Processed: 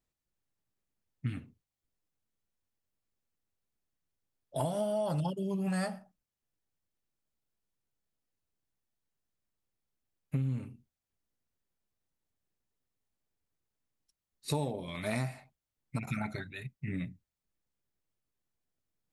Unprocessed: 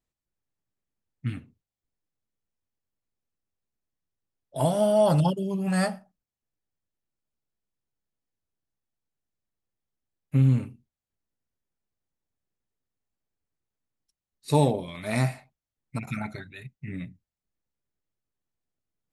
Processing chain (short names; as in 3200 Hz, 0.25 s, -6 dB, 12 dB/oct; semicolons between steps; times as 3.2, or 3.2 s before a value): compressor 6:1, threshold -30 dBFS, peak gain reduction 13.5 dB